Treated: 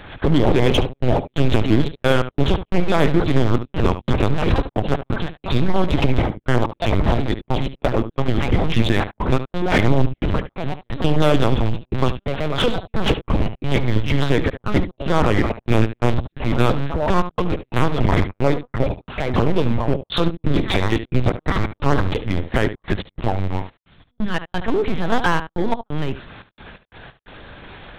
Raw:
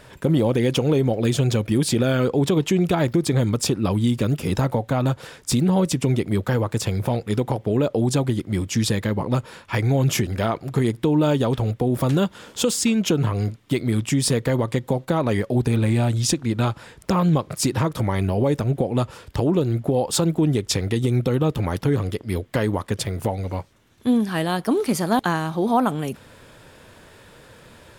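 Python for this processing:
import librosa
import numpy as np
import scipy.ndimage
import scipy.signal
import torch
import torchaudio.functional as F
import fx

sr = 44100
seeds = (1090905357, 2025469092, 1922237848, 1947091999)

p1 = fx.echo_pitch(x, sr, ms=232, semitones=3, count=3, db_per_echo=-6.0)
p2 = fx.peak_eq(p1, sr, hz=370.0, db=-5.0, octaves=1.6)
p3 = fx.step_gate(p2, sr, bpm=88, pattern='xxxxx.x.xxx.x.x.', floor_db=-60.0, edge_ms=4.5)
p4 = fx.lpc_vocoder(p3, sr, seeds[0], excitation='pitch_kept', order=8)
p5 = p4 + 10.0 ** (-14.5 / 20.0) * np.pad(p4, (int(72 * sr / 1000.0), 0))[:len(p4)]
p6 = 10.0 ** (-25.0 / 20.0) * (np.abs((p5 / 10.0 ** (-25.0 / 20.0) + 3.0) % 4.0 - 2.0) - 1.0)
p7 = p5 + F.gain(torch.from_numpy(p6), -6.0).numpy()
y = F.gain(torch.from_numpy(p7), 6.0).numpy()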